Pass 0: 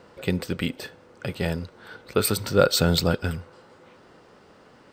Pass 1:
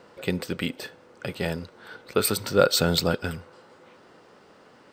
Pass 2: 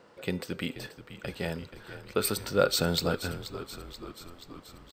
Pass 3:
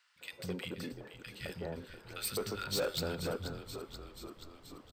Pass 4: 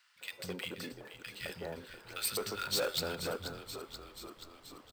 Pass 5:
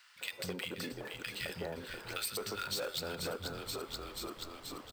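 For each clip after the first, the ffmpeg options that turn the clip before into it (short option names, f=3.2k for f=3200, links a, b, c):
-af "lowshelf=f=100:g=-11.5"
-filter_complex "[0:a]bandreject=f=395.8:t=h:w=4,bandreject=f=791.6:t=h:w=4,bandreject=f=1.1874k:t=h:w=4,bandreject=f=1.5832k:t=h:w=4,bandreject=f=1.979k:t=h:w=4,bandreject=f=2.3748k:t=h:w=4,bandreject=f=2.7706k:t=h:w=4,bandreject=f=3.1664k:t=h:w=4,bandreject=f=3.5622k:t=h:w=4,bandreject=f=3.958k:t=h:w=4,bandreject=f=4.3538k:t=h:w=4,bandreject=f=4.7496k:t=h:w=4,bandreject=f=5.1454k:t=h:w=4,bandreject=f=5.5412k:t=h:w=4,bandreject=f=5.937k:t=h:w=4,bandreject=f=6.3328k:t=h:w=4,bandreject=f=6.7286k:t=h:w=4,bandreject=f=7.1244k:t=h:w=4,bandreject=f=7.5202k:t=h:w=4,bandreject=f=7.916k:t=h:w=4,bandreject=f=8.3118k:t=h:w=4,bandreject=f=8.7076k:t=h:w=4,bandreject=f=9.1034k:t=h:w=4,bandreject=f=9.4992k:t=h:w=4,bandreject=f=9.895k:t=h:w=4,bandreject=f=10.2908k:t=h:w=4,bandreject=f=10.6866k:t=h:w=4,bandreject=f=11.0824k:t=h:w=4,bandreject=f=11.4782k:t=h:w=4,bandreject=f=11.874k:t=h:w=4,bandreject=f=12.2698k:t=h:w=4,bandreject=f=12.6656k:t=h:w=4,bandreject=f=13.0614k:t=h:w=4,bandreject=f=13.4572k:t=h:w=4,bandreject=f=13.853k:t=h:w=4,bandreject=f=14.2488k:t=h:w=4,bandreject=f=14.6446k:t=h:w=4,bandreject=f=15.0404k:t=h:w=4,bandreject=f=15.4362k:t=h:w=4,asplit=8[a][b][c][d][e][f][g][h];[b]adelay=481,afreqshift=-56,volume=-13dB[i];[c]adelay=962,afreqshift=-112,volume=-17dB[j];[d]adelay=1443,afreqshift=-168,volume=-21dB[k];[e]adelay=1924,afreqshift=-224,volume=-25dB[l];[f]adelay=2405,afreqshift=-280,volume=-29.1dB[m];[g]adelay=2886,afreqshift=-336,volume=-33.1dB[n];[h]adelay=3367,afreqshift=-392,volume=-37.1dB[o];[a][i][j][k][l][m][n][o]amix=inputs=8:normalize=0,volume=-5dB"
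-filter_complex "[0:a]acrossover=split=190|1500[a][b][c];[a]adelay=160[d];[b]adelay=210[e];[d][e][c]amix=inputs=3:normalize=0,asoftclip=type=tanh:threshold=-24.5dB,volume=-4dB"
-filter_complex "[0:a]acrossover=split=940[a][b];[b]acrusher=bits=3:mode=log:mix=0:aa=0.000001[c];[a][c]amix=inputs=2:normalize=0,lowshelf=f=400:g=-9,volume=3dB"
-af "acompressor=threshold=-44dB:ratio=4,volume=7dB"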